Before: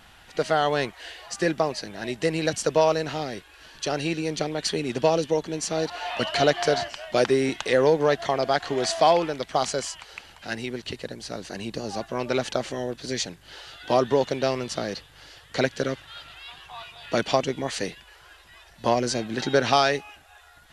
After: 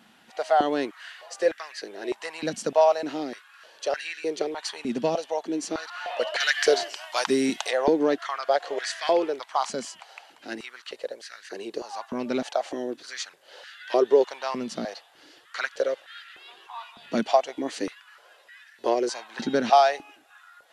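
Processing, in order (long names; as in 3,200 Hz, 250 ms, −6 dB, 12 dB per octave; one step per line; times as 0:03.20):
0:06.40–0:07.71: high-shelf EQ 3,000 Hz +11.5 dB
high-pass on a step sequencer 3.3 Hz 220–1,700 Hz
level −6 dB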